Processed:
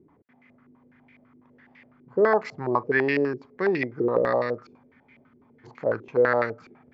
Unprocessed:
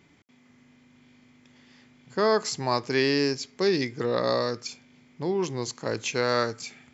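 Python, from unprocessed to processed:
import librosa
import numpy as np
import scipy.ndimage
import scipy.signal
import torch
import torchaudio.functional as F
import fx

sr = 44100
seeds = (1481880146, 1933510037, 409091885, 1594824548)

y = fx.spec_freeze(x, sr, seeds[0], at_s=4.92, hold_s=0.73)
y = fx.filter_held_lowpass(y, sr, hz=12.0, low_hz=370.0, high_hz=2200.0)
y = y * librosa.db_to_amplitude(-2.0)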